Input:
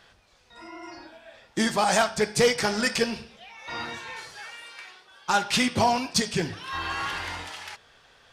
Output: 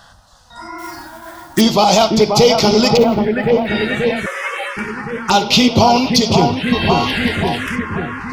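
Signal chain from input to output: 2.97–3.67 median filter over 25 samples; on a send: dark delay 0.534 s, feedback 74%, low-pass 1600 Hz, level -6 dB; 4.26–4.77 on the sum: frequency shift +330 Hz; envelope phaser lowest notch 390 Hz, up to 1700 Hz, full sweep at -23 dBFS; 0.78–1.61 modulation noise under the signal 12 dB; maximiser +16.5 dB; gain -1 dB

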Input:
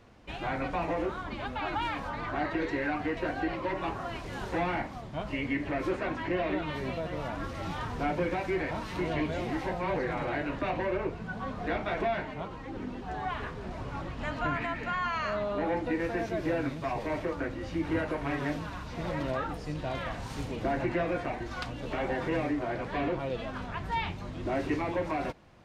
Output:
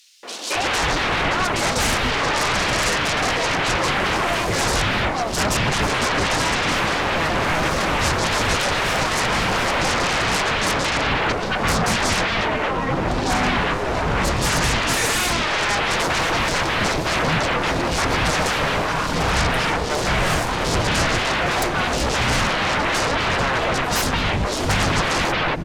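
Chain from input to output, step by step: sine folder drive 19 dB, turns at -18 dBFS; three bands offset in time highs, mids, lows 0.23/0.55 s, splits 290/3800 Hz; gain +1.5 dB

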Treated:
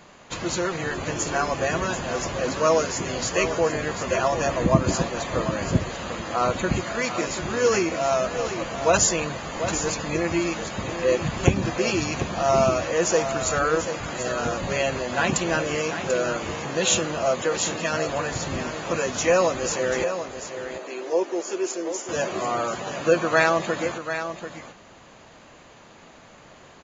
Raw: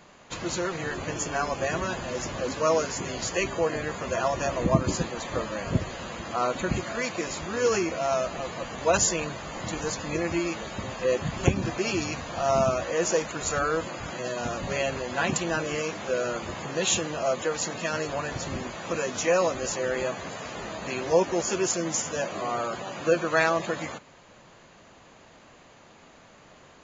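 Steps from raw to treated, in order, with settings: 20.04–22.09 ladder high-pass 290 Hz, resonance 45%; echo 0.739 s -9.5 dB; gain +3.5 dB

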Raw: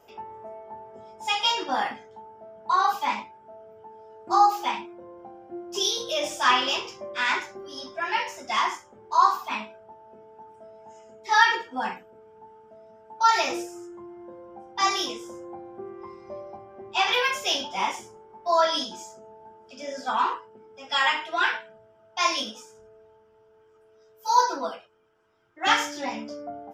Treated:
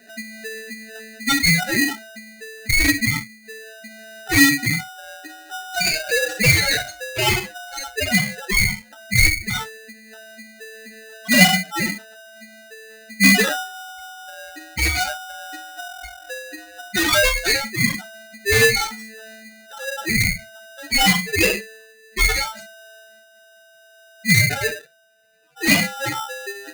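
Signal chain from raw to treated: spectral contrast raised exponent 2.9; in parallel at -8.5 dB: wrapped overs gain 17.5 dB; on the sum: non-linear reverb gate 90 ms falling, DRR 9.5 dB; polarity switched at an audio rate 1100 Hz; gain +4.5 dB

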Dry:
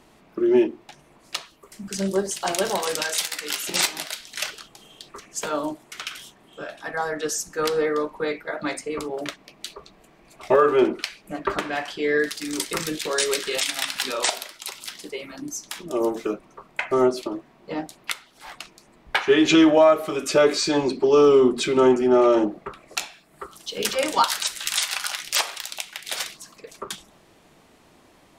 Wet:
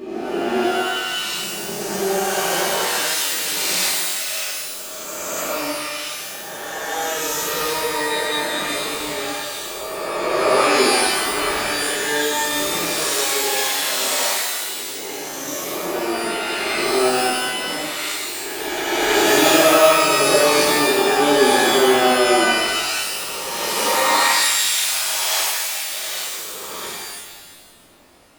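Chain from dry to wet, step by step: spectral swells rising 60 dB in 2.66 s; shimmer reverb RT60 1.2 s, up +12 st, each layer -2 dB, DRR -6.5 dB; gain -11 dB

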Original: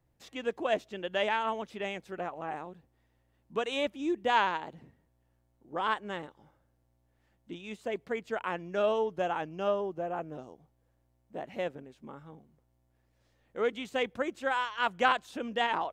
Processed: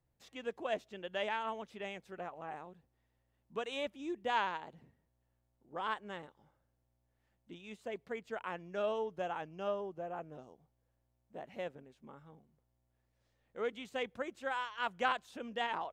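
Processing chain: bell 310 Hz -3.5 dB 0.37 oct; gain -7 dB

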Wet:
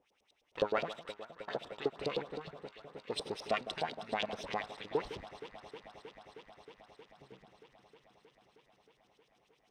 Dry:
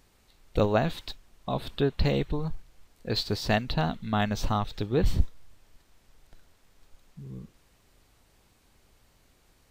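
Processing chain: minimum comb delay 0.33 ms; LFO band-pass saw up 9.7 Hz 420–4900 Hz; echo with dull and thin repeats by turns 0.157 s, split 1400 Hz, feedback 90%, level -13 dB; gain +1 dB

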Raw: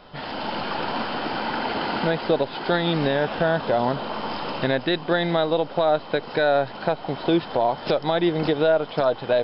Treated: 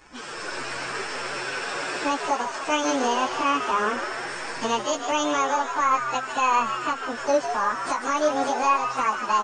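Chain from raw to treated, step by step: pitch shift by moving bins +9.5 st; frequency-shifting echo 0.151 s, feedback 61%, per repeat +130 Hz, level -8.5 dB

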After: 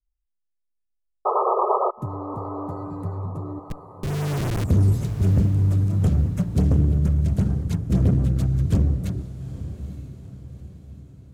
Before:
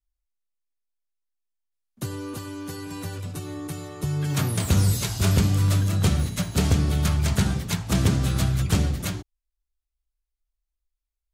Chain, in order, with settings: Wiener smoothing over 15 samples; tilt shelf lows +7.5 dB, about 680 Hz; 3.59–4.64 Schmitt trigger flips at -20 dBFS; rotary speaker horn 0.6 Hz, later 6 Hz, at 7.41; hard clip -11 dBFS, distortion -16 dB; 1.25–1.91 painted sound noise 360–1300 Hz -17 dBFS; LFO notch sine 8.8 Hz 730–4600 Hz; diffused feedback echo 0.879 s, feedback 46%, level -13 dB; gain -2.5 dB

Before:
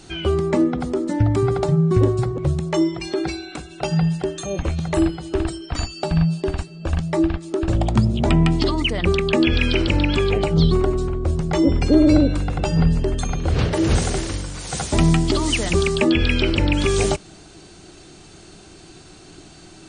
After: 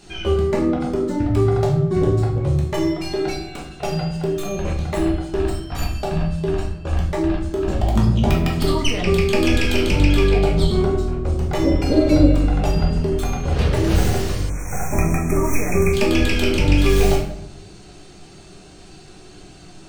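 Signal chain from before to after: tracing distortion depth 0.12 ms; shoebox room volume 170 m³, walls mixed, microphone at 1.3 m; spectral delete 14.5–15.94, 2600–5500 Hz; gain -4.5 dB

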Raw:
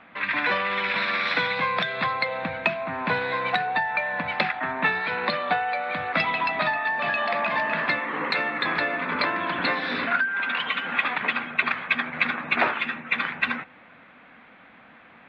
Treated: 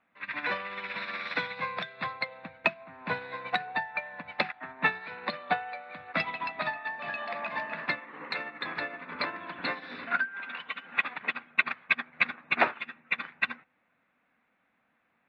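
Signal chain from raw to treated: notch 3200 Hz, Q 14; upward expander 2.5:1, over -33 dBFS

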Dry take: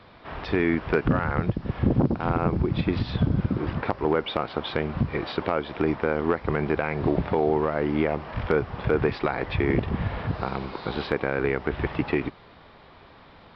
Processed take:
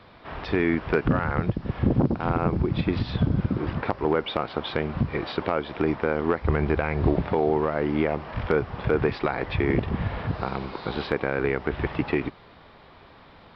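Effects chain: 6.42–7.14 bell 65 Hz +12.5 dB 1.1 oct

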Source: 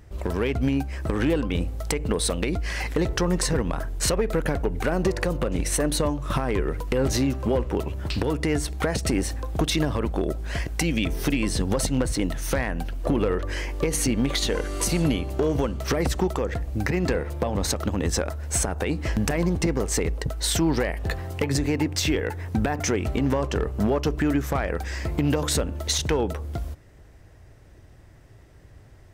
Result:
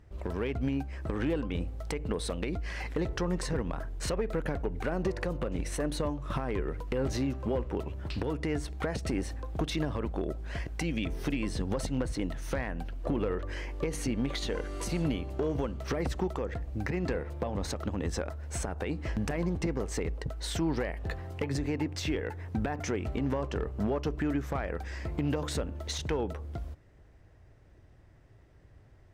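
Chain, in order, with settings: LPF 3500 Hz 6 dB/oct; gain -7.5 dB

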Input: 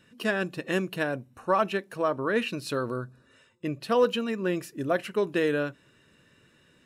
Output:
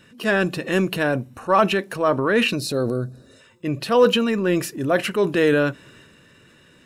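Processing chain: spectral gain 2.56–3.41, 820–3600 Hz -10 dB; transient shaper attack -5 dB, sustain +5 dB; gain +8.5 dB

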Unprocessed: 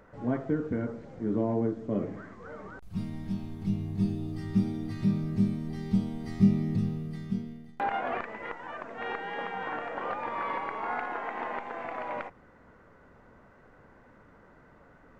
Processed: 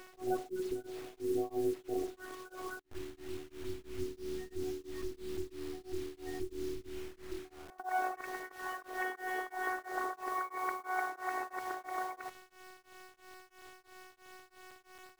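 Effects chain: LPF 4200 Hz; spectral gate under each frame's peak -20 dB strong; HPF 210 Hz 6 dB/oct; in parallel at +3 dB: compressor 12:1, threshold -41 dBFS, peak gain reduction 21.5 dB; on the sum: robotiser 372 Hz; requantised 8-bit, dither none; on a send: reverse echo 0.346 s -23.5 dB; on the sum: beating tremolo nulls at 3 Hz; gain -1 dB

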